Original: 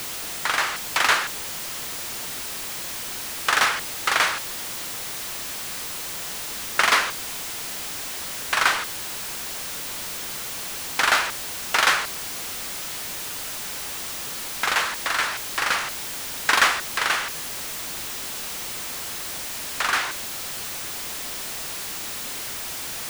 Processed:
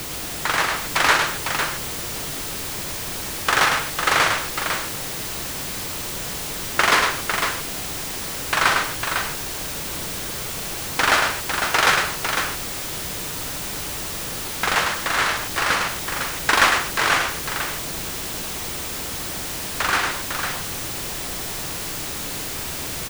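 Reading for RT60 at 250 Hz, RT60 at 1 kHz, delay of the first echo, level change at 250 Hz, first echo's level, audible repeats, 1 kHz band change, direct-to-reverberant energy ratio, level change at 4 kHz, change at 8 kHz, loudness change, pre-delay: no reverb, no reverb, 105 ms, +9.0 dB, -5.0 dB, 2, +3.5 dB, no reverb, +2.0 dB, +2.0 dB, +2.5 dB, no reverb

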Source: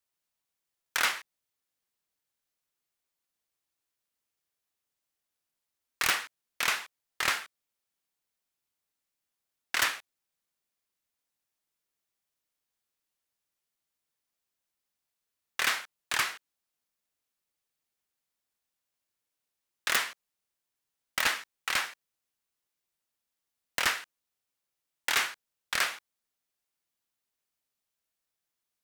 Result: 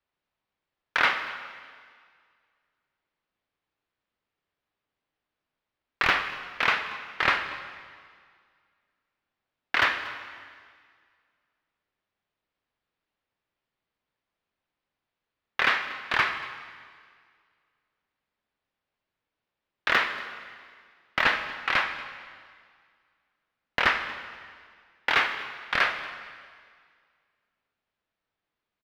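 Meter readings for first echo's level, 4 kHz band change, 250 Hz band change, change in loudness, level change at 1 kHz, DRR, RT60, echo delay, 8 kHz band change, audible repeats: -19.5 dB, +1.0 dB, +8.5 dB, +3.5 dB, +7.5 dB, 7.5 dB, 1.9 s, 235 ms, -15.0 dB, 1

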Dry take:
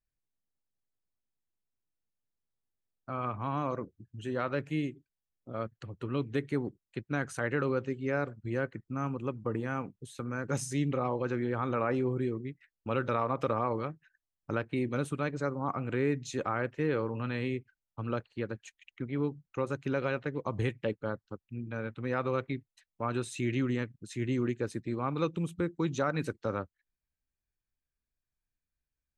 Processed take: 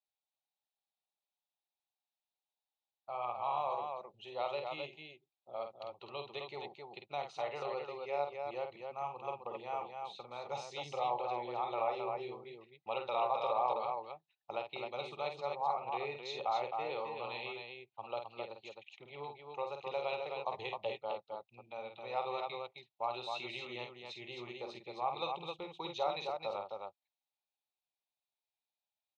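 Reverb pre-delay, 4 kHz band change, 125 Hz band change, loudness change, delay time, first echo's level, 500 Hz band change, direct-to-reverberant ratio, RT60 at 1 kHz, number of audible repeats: no reverb, +3.5 dB, -22.5 dB, -6.0 dB, 49 ms, -6.5 dB, -5.5 dB, no reverb, no reverb, 2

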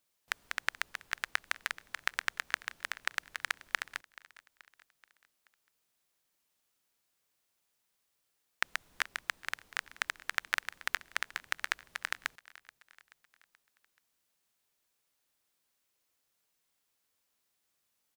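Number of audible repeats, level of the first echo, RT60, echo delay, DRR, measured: 3, -20.0 dB, no reverb, 430 ms, no reverb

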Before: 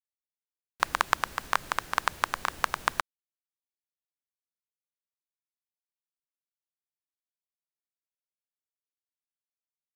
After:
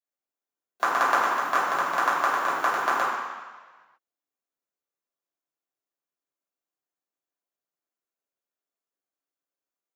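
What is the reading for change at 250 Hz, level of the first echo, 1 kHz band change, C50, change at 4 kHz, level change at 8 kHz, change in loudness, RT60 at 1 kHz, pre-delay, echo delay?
+8.5 dB, no echo, +7.0 dB, 0.0 dB, -1.5 dB, -0.5 dB, +5.5 dB, 1.4 s, 3 ms, no echo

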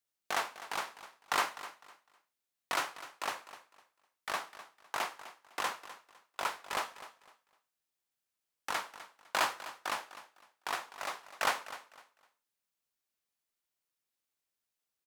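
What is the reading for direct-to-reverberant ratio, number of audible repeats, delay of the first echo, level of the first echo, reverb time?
no reverb, 2, 253 ms, -15.0 dB, no reverb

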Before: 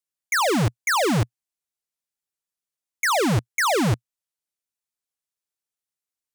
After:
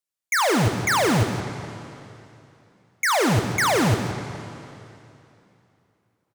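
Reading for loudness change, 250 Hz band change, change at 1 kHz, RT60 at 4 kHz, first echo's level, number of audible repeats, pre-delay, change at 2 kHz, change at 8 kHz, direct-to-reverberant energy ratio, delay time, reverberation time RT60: +0.5 dB, +1.0 dB, +1.0 dB, 2.7 s, -10.0 dB, 1, 6 ms, +1.0 dB, +1.0 dB, 5.0 dB, 174 ms, 2.8 s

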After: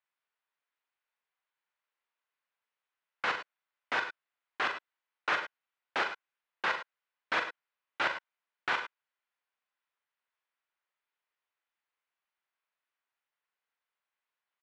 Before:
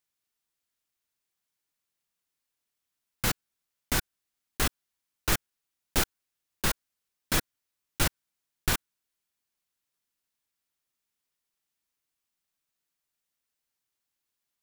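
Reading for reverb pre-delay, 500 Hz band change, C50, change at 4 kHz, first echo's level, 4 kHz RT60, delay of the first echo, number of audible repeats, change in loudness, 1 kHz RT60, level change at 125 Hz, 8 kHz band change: no reverb, -2.5 dB, no reverb, -6.0 dB, -5.5 dB, no reverb, 40 ms, 2, -3.5 dB, no reverb, -25.0 dB, -23.5 dB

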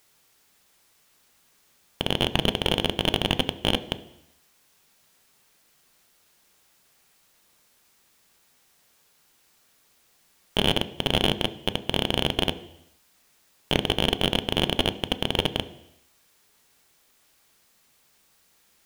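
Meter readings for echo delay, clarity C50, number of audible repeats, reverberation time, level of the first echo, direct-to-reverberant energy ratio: no echo, 16.5 dB, no echo, 0.85 s, no echo, 11.0 dB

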